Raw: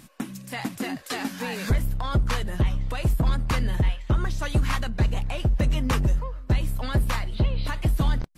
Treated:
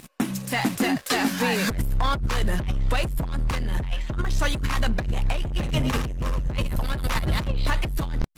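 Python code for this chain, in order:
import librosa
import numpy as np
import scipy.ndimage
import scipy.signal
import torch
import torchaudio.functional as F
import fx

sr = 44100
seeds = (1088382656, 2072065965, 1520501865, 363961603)

y = fx.reverse_delay_fb(x, sr, ms=163, feedback_pct=48, wet_db=-3.5, at=(5.16, 7.48))
y = fx.leveller(y, sr, passes=3)
y = fx.over_compress(y, sr, threshold_db=-17.0, ratio=-0.5)
y = y * librosa.db_to_amplitude(-5.0)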